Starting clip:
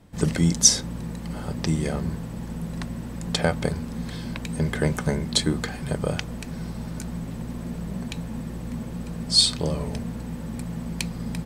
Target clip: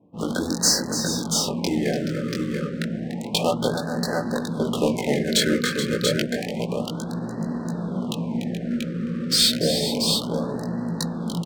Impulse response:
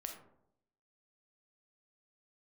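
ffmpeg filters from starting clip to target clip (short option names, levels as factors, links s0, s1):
-filter_complex "[0:a]afftfilt=real='re*lt(hypot(re,im),0.631)':imag='im*lt(hypot(re,im),0.631)':win_size=1024:overlap=0.75,highpass=220,dynaudnorm=f=150:g=3:m=1.68,flanger=delay=17:depth=6:speed=0.83,asplit=2[s0][s1];[s1]aeval=exprs='0.1*(abs(mod(val(0)/0.1+3,4)-2)-1)':c=same,volume=0.562[s2];[s0][s2]amix=inputs=2:normalize=0,adynamicsmooth=sensitivity=7:basefreq=580,aecho=1:1:292|427|685:0.316|0.282|0.562,afftfilt=real='re*(1-between(b*sr/1024,790*pow(2800/790,0.5+0.5*sin(2*PI*0.3*pts/sr))/1.41,790*pow(2800/790,0.5+0.5*sin(2*PI*0.3*pts/sr))*1.41))':imag='im*(1-between(b*sr/1024,790*pow(2800/790,0.5+0.5*sin(2*PI*0.3*pts/sr))/1.41,790*pow(2800/790,0.5+0.5*sin(2*PI*0.3*pts/sr))*1.41))':win_size=1024:overlap=0.75,volume=1.19"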